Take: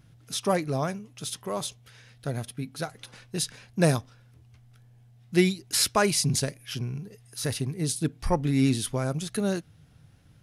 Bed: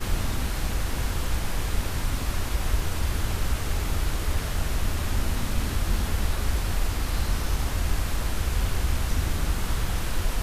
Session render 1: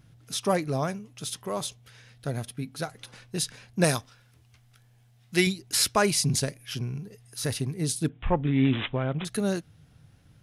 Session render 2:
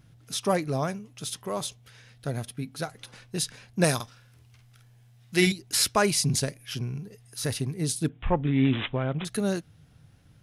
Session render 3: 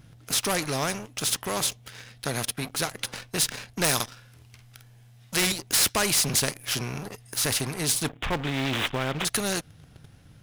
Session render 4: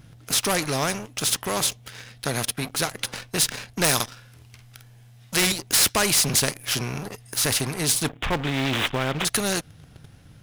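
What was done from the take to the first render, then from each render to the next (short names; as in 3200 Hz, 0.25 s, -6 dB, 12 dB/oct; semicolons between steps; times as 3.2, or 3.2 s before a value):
3.84–5.47 tilt shelf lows -5 dB, about 790 Hz; 8.09–9.25 careless resampling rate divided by 6×, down none, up filtered
3.95–5.52 doubler 50 ms -5 dB
sample leveller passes 2; spectral compressor 2:1
gain +3 dB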